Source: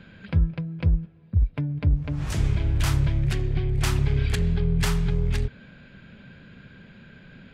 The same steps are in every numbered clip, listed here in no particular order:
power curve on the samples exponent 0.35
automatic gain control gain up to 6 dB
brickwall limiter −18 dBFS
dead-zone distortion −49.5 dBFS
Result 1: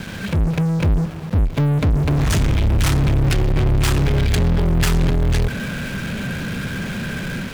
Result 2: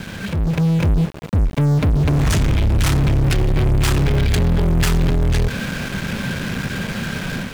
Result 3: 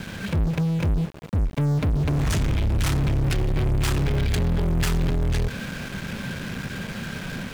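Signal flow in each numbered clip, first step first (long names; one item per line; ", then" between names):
brickwall limiter, then automatic gain control, then dead-zone distortion, then power curve on the samples
dead-zone distortion, then power curve on the samples, then brickwall limiter, then automatic gain control
dead-zone distortion, then automatic gain control, then brickwall limiter, then power curve on the samples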